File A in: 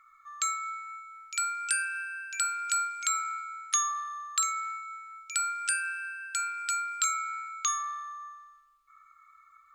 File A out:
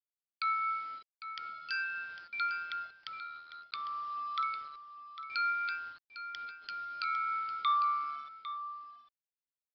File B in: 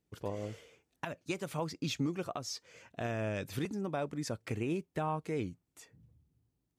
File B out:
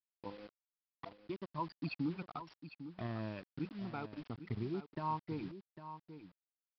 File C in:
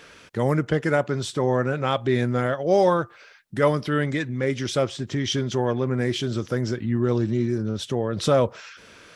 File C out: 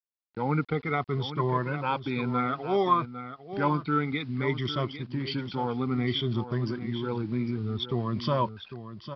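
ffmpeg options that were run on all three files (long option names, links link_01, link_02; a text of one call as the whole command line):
ffmpeg -i in.wav -filter_complex "[0:a]afftfilt=real='re*pow(10,15/40*sin(2*PI*(1.3*log(max(b,1)*sr/1024/100)/log(2)-(-0.59)*(pts-256)/sr)))':imag='im*pow(10,15/40*sin(2*PI*(1.3*log(max(b,1)*sr/1024/100)/log(2)-(-0.59)*(pts-256)/sr)))':win_size=1024:overlap=0.75,highpass=frequency=110:poles=1,anlmdn=15.8,aecho=1:1:0.9:0.59,aresample=16000,acrusher=bits=7:mix=0:aa=0.000001,aresample=44100,adynamicequalizer=threshold=0.01:dfrequency=1000:dqfactor=2.4:tfrequency=1000:tqfactor=2.4:attack=5:release=100:ratio=0.375:range=1.5:mode=boostabove:tftype=bell,asplit=2[link_01][link_02];[link_02]aecho=0:1:802:0.266[link_03];[link_01][link_03]amix=inputs=2:normalize=0,aresample=11025,aresample=44100,volume=-7.5dB" out.wav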